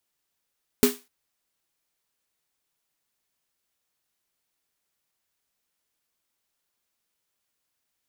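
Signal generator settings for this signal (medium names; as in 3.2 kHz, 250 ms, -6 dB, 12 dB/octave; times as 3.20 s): snare drum length 0.25 s, tones 250 Hz, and 410 Hz, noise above 740 Hz, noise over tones -6 dB, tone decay 0.21 s, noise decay 0.29 s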